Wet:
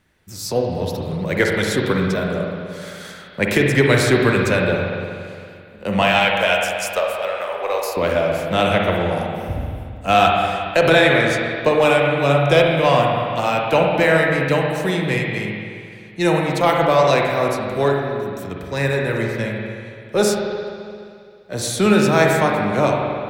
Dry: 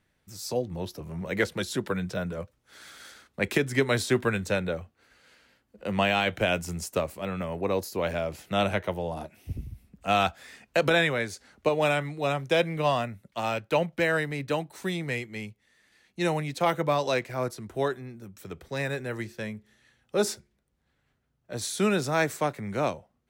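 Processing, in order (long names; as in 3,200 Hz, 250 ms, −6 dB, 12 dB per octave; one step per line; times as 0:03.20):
0:06.02–0:07.97: high-pass filter 530 Hz 24 dB per octave
in parallel at −10.5 dB: asymmetric clip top −34.5 dBFS
on the sum: spring reverb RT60 2.3 s, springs 43/57 ms, chirp 25 ms, DRR −0.5 dB
level +6 dB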